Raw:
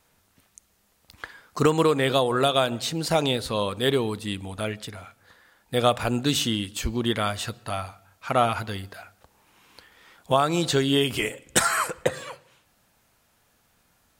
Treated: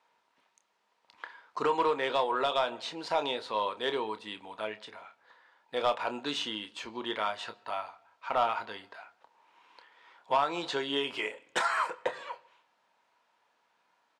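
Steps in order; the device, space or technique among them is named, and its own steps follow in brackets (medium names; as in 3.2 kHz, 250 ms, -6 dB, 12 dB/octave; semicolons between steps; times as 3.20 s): intercom (band-pass 440–3700 Hz; peaking EQ 950 Hz +11 dB 0.21 oct; saturation -11.5 dBFS, distortion -18 dB; doubling 28 ms -10.5 dB); trim -5.5 dB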